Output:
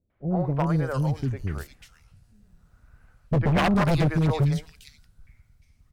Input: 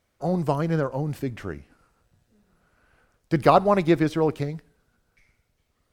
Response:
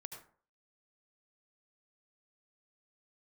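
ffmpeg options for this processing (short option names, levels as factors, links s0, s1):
-filter_complex "[0:a]acrossover=split=430|2700[s0][s1][s2];[s1]adelay=100[s3];[s2]adelay=450[s4];[s0][s3][s4]amix=inputs=3:normalize=0,asubboost=boost=7:cutoff=160,aeval=exprs='0.168*(abs(mod(val(0)/0.168+3,4)-2)-1)':c=same"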